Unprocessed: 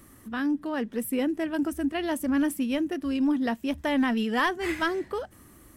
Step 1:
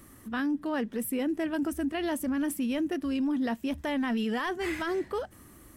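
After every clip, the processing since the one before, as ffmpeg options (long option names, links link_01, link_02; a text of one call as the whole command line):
ffmpeg -i in.wav -af "alimiter=limit=-23.5dB:level=0:latency=1:release=18" out.wav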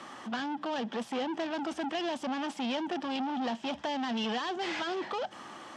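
ffmpeg -i in.wav -filter_complex "[0:a]asplit=2[link_01][link_02];[link_02]highpass=frequency=720:poles=1,volume=23dB,asoftclip=type=tanh:threshold=-23dB[link_03];[link_01][link_03]amix=inputs=2:normalize=0,lowpass=frequency=2000:poles=1,volume=-6dB,highpass=210,equalizer=frequency=290:width_type=q:width=4:gain=-7,equalizer=frequency=420:width_type=q:width=4:gain=-6,equalizer=frequency=820:width_type=q:width=4:gain=8,equalizer=frequency=2000:width_type=q:width=4:gain=-4,equalizer=frequency=3200:width_type=q:width=4:gain=7,equalizer=frequency=5200:width_type=q:width=4:gain=3,lowpass=frequency=7000:width=0.5412,lowpass=frequency=7000:width=1.3066,acrossover=split=460|3000[link_04][link_05][link_06];[link_05]acompressor=threshold=-35dB:ratio=6[link_07];[link_04][link_07][link_06]amix=inputs=3:normalize=0" out.wav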